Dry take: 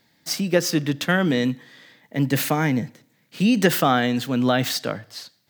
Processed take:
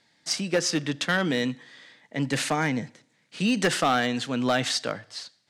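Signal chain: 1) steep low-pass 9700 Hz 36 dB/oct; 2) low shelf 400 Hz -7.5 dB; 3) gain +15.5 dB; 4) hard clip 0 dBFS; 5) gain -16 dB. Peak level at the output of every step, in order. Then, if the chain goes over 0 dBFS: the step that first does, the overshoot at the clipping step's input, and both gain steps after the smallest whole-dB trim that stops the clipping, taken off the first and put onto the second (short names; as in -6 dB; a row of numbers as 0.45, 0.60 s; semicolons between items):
-4.0, -6.5, +9.0, 0.0, -16.0 dBFS; step 3, 9.0 dB; step 3 +6.5 dB, step 5 -7 dB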